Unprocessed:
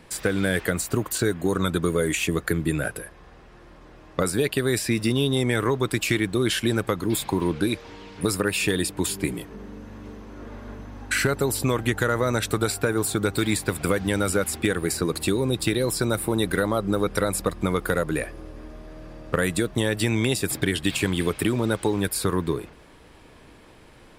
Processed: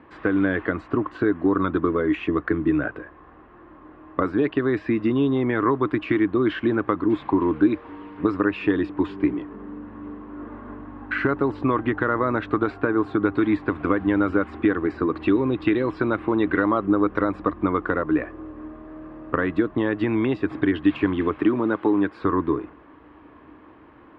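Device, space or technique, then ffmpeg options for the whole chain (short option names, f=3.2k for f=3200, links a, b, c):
bass cabinet: -filter_complex "[0:a]highpass=64,equalizer=f=110:t=q:w=4:g=-6,equalizer=f=170:t=q:w=4:g=-7,equalizer=f=300:t=q:w=4:g=10,equalizer=f=510:t=q:w=4:g=-3,equalizer=f=1.1k:t=q:w=4:g=8,equalizer=f=2.3k:t=q:w=4:g=-5,lowpass=f=2.4k:w=0.5412,lowpass=f=2.4k:w=1.3066,asettb=1/sr,asplit=3[a][b][c];[a]atrim=end=15.204[d];[b]atrim=start=15.2:end=16.86,asetpts=PTS-STARTPTS,afade=t=in:d=0.004:c=qsin,afade=t=out:st=1.656:d=0.004:c=qsin,equalizer=f=2.6k:w=1.2:g=6[e];[c]atrim=start=16.856[f];[d][e]acrossfade=d=0.004:c1=hsin:c2=qsin[g];[g][f]acrossfade=d=0.004:c1=qsin:c2=hsin,asettb=1/sr,asplit=3[h][i][j];[h]atrim=end=21.404[k];[i]atrim=start=21.4:end=22.22,asetpts=PTS-STARTPTS,afade=t=in:d=0.004:c=qsin,afade=t=out:st=0.816:d=0.004:c=qsin,highpass=130[l];[j]atrim=start=22.216[m];[k][l]acrossfade=d=0.004:c1=hsin:c2=qsin[n];[n][m]acrossfade=d=0.004:c1=qsin:c2=hsin"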